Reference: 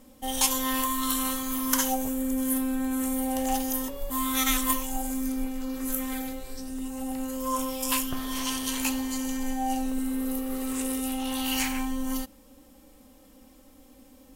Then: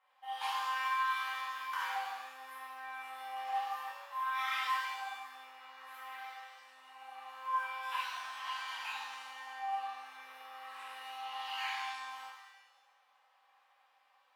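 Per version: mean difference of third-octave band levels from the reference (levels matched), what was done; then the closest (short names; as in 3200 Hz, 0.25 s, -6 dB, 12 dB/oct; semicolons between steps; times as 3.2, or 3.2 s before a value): 12.5 dB: Chebyshev high-pass 810 Hz, order 4; air absorption 490 m; shimmer reverb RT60 1 s, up +7 st, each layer -8 dB, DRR -8 dB; gain -8.5 dB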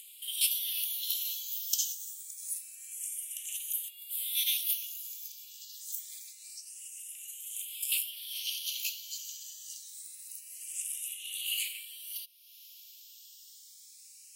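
16.0 dB: steep high-pass 2600 Hz 48 dB/oct; upward compressor, threshold -37 dBFS; endless phaser +0.26 Hz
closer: first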